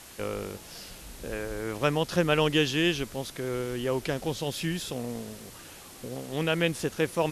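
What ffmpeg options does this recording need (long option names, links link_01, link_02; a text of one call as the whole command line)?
ffmpeg -i in.wav -af "afwtdn=0.0045" out.wav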